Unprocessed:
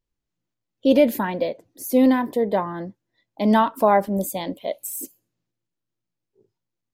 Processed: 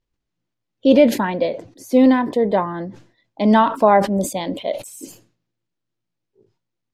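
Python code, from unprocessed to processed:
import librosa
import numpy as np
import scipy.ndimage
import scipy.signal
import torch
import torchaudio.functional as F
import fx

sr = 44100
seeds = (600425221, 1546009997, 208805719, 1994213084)

y = scipy.signal.sosfilt(scipy.signal.butter(2, 5900.0, 'lowpass', fs=sr, output='sos'), x)
y = fx.sustainer(y, sr, db_per_s=130.0)
y = F.gain(torch.from_numpy(y), 3.5).numpy()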